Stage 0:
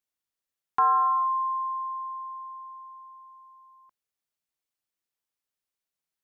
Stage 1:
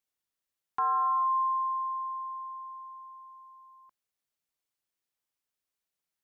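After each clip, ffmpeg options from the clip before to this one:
-af "alimiter=limit=-23.5dB:level=0:latency=1"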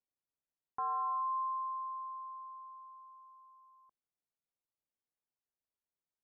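-af "lowpass=1k,volume=-4.5dB"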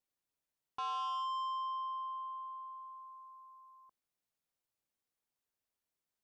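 -af "asoftclip=type=tanh:threshold=-39dB,volume=3.5dB"

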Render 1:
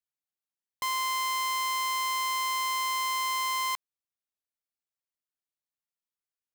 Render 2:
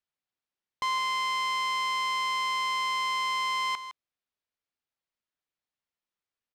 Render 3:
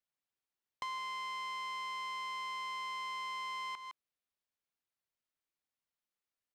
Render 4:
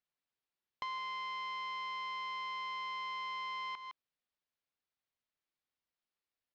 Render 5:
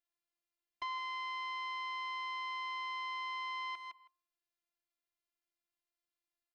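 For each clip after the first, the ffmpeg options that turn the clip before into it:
-filter_complex "[0:a]lowpass=4.3k,asplit=2[a][b];[b]asoftclip=type=hard:threshold=-38.5dB,volume=-6dB[c];[a][c]amix=inputs=2:normalize=0,aecho=1:1:160:0.251,volume=1dB"
-filter_complex "[0:a]acrossover=split=620|3000[a][b][c];[a]acompressor=threshold=-56dB:ratio=4[d];[b]acompressor=threshold=-37dB:ratio=4[e];[c]acompressor=threshold=-50dB:ratio=4[f];[d][e][f]amix=inputs=3:normalize=0,volume=-3.5dB"
-af "lowpass=f=5.1k:w=0.5412,lowpass=f=5.1k:w=1.3066"
-filter_complex "[0:a]afftfilt=real='hypot(re,im)*cos(PI*b)':imag='0':win_size=512:overlap=0.75,bandreject=f=105.2:t=h:w=4,bandreject=f=210.4:t=h:w=4,bandreject=f=315.6:t=h:w=4,bandreject=f=420.8:t=h:w=4,bandreject=f=526:t=h:w=4,bandreject=f=631.2:t=h:w=4,bandreject=f=736.4:t=h:w=4,bandreject=f=841.6:t=h:w=4,bandreject=f=946.8:t=h:w=4,bandreject=f=1.052k:t=h:w=4,bandreject=f=1.1572k:t=h:w=4,asplit=2[a][b];[b]adelay=160,highpass=300,lowpass=3.4k,asoftclip=type=hard:threshold=-36dB,volume=-17dB[c];[a][c]amix=inputs=2:normalize=0,volume=1dB"

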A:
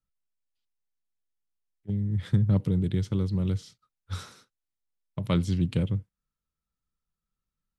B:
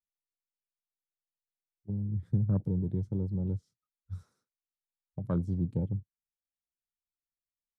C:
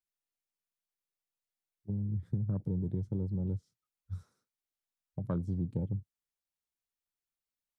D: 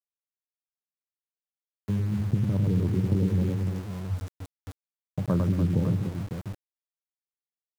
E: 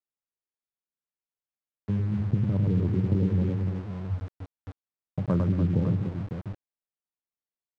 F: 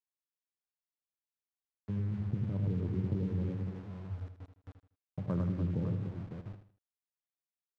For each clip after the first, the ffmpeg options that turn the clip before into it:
-af "afwtdn=0.0158,equalizer=f=3k:t=o:w=1.3:g=-12.5,volume=-5dB"
-af "acompressor=threshold=-29dB:ratio=6"
-af "aecho=1:1:44|101|228|293|554:0.1|0.596|0.168|0.355|0.355,aeval=exprs='val(0)*gte(abs(val(0)),0.00562)':c=same,volume=8dB"
-af "adynamicsmooth=sensitivity=4.5:basefreq=2.1k"
-af "aecho=1:1:79|158|237:0.316|0.098|0.0304,volume=-9dB"

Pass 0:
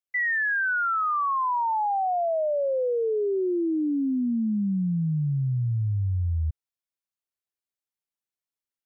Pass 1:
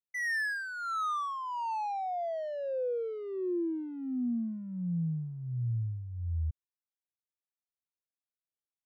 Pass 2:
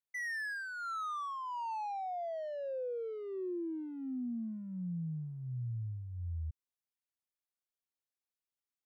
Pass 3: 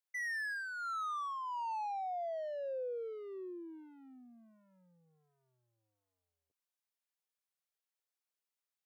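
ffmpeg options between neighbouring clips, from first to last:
-filter_complex "[0:a]adynamicsmooth=sensitivity=6:basefreq=1.2k,acrossover=split=760[a][b];[a]aeval=exprs='val(0)*(1-0.7/2+0.7/2*cos(2*PI*1.4*n/s))':c=same[c];[b]aeval=exprs='val(0)*(1-0.7/2-0.7/2*cos(2*PI*1.4*n/s))':c=same[d];[c][d]amix=inputs=2:normalize=0,volume=-5.5dB"
-af "acompressor=threshold=-33dB:ratio=6,volume=-3dB"
-af "highpass=f=430:w=0.5412,highpass=f=430:w=1.3066"

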